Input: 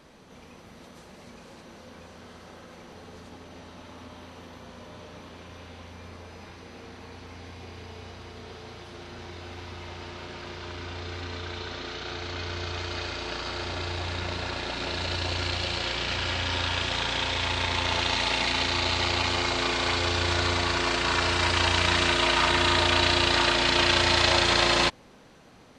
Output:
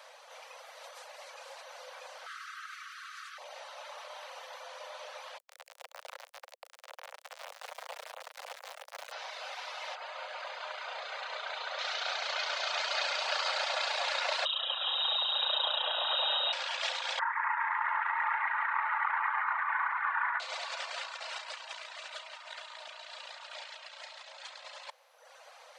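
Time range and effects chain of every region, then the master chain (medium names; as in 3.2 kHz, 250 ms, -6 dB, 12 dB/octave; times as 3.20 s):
2.26–3.38 s: brick-wall FIR high-pass 1.1 kHz + peaking EQ 1.4 kHz +8 dB 1 oct
5.38–9.12 s: word length cut 6-bit, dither none + tilt EQ -3 dB/octave
9.95–11.79 s: Butterworth band-stop 5.5 kHz, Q 7.9 + treble shelf 2.9 kHz -8.5 dB
14.45–16.53 s: static phaser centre 660 Hz, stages 4 + frequency inversion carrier 3.8 kHz
17.19–20.40 s: elliptic band-pass 910–1900 Hz, stop band 60 dB + doubling 24 ms -8.5 dB
whole clip: steep high-pass 510 Hz 96 dB/octave; reverb removal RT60 0.61 s; compressor with a negative ratio -34 dBFS, ratio -0.5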